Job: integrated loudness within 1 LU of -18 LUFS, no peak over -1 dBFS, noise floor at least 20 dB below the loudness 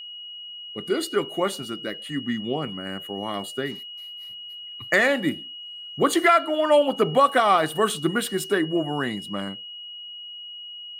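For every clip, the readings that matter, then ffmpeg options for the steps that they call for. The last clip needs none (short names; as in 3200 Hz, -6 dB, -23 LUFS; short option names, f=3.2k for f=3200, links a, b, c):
steady tone 2900 Hz; tone level -36 dBFS; loudness -23.5 LUFS; peak -7.0 dBFS; loudness target -18.0 LUFS
-> -af "bandreject=f=2.9k:w=30"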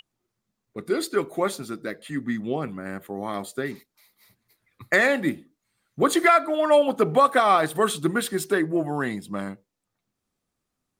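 steady tone none; loudness -23.5 LUFS; peak -7.5 dBFS; loudness target -18.0 LUFS
-> -af "volume=5.5dB"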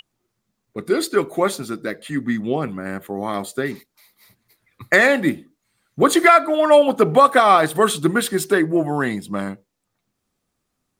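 loudness -18.0 LUFS; peak -2.0 dBFS; noise floor -76 dBFS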